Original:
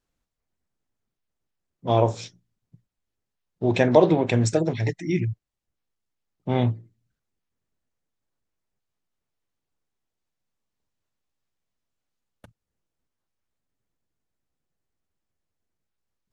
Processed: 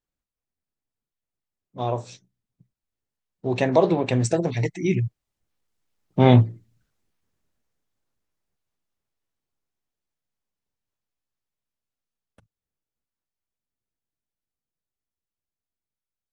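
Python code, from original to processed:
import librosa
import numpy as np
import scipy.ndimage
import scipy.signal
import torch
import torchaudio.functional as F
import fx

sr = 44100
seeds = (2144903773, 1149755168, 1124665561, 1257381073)

y = fx.doppler_pass(x, sr, speed_mps=17, closest_m=15.0, pass_at_s=6.51)
y = F.gain(torch.from_numpy(y), 8.5).numpy()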